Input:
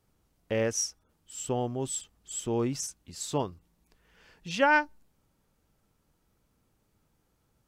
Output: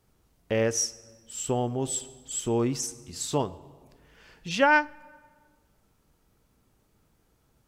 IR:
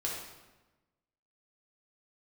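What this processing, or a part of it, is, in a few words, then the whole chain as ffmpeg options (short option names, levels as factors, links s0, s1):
ducked reverb: -filter_complex "[0:a]asplit=3[s0][s1][s2];[1:a]atrim=start_sample=2205[s3];[s1][s3]afir=irnorm=-1:irlink=0[s4];[s2]apad=whole_len=338621[s5];[s4][s5]sidechaincompress=threshold=0.0251:ratio=8:attack=10:release=740,volume=0.335[s6];[s0][s6]amix=inputs=2:normalize=0,volume=1.26"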